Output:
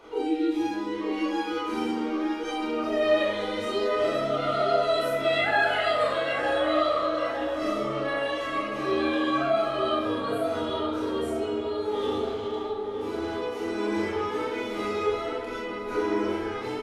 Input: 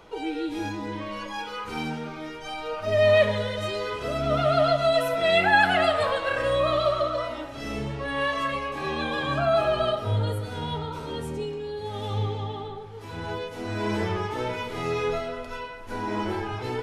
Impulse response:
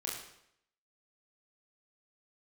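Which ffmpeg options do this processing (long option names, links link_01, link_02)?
-filter_complex "[0:a]lowshelf=frequency=210:width_type=q:width=3:gain=-6.5,asplit=2[link_01][link_02];[link_02]acompressor=threshold=-29dB:ratio=6,volume=2.5dB[link_03];[link_01][link_03]amix=inputs=2:normalize=0,aphaser=in_gain=1:out_gain=1:delay=4.9:decay=0.23:speed=0.25:type=sinusoidal,asettb=1/sr,asplit=3[link_04][link_05][link_06];[link_04]atrim=end=12.204[link_07];[link_05]atrim=start=12.2:end=13.36,asetpts=PTS-STARTPTS,afade=type=in:duration=0.004:curve=qsin,afade=type=out:start_time=1.156:duration=0.004:curve=qsin,volume=22dB,asoftclip=hard,volume=-22dB[link_08];[link_06]atrim=start=13.356[link_09];[link_07][link_08]acrossfade=duration=0.004:curve1=hsin:curve2=qsin[link_10];[link_10][link_09]acrossfade=duration=0.004:curve1=qsin:curve2=hsin,asplit=2[link_11][link_12];[link_12]adelay=910,lowpass=frequency=1400:poles=1,volume=-4.5dB,asplit=2[link_13][link_14];[link_14]adelay=910,lowpass=frequency=1400:poles=1,volume=0.52,asplit=2[link_15][link_16];[link_16]adelay=910,lowpass=frequency=1400:poles=1,volume=0.52,asplit=2[link_17][link_18];[link_18]adelay=910,lowpass=frequency=1400:poles=1,volume=0.52,asplit=2[link_19][link_20];[link_20]adelay=910,lowpass=frequency=1400:poles=1,volume=0.52,asplit=2[link_21][link_22];[link_22]adelay=910,lowpass=frequency=1400:poles=1,volume=0.52,asplit=2[link_23][link_24];[link_24]adelay=910,lowpass=frequency=1400:poles=1,volume=0.52[link_25];[link_11][link_13][link_15][link_17][link_19][link_21][link_23][link_25]amix=inputs=8:normalize=0[link_26];[1:a]atrim=start_sample=2205,afade=type=out:start_time=0.18:duration=0.01,atrim=end_sample=8379[link_27];[link_26][link_27]afir=irnorm=-1:irlink=0,volume=-8dB"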